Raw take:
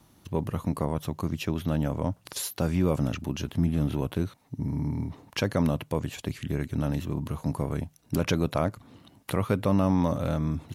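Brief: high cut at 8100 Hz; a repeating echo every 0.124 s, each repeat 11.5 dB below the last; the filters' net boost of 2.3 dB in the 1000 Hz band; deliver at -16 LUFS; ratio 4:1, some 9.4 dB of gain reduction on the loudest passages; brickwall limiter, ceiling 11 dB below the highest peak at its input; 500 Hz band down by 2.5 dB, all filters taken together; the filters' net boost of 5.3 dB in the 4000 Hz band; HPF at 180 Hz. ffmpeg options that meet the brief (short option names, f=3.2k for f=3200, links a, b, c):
-af "highpass=180,lowpass=8.1k,equalizer=f=500:t=o:g=-4,equalizer=f=1k:t=o:g=3.5,equalizer=f=4k:t=o:g=7,acompressor=threshold=-33dB:ratio=4,alimiter=level_in=2dB:limit=-24dB:level=0:latency=1,volume=-2dB,aecho=1:1:124|248|372:0.266|0.0718|0.0194,volume=23dB"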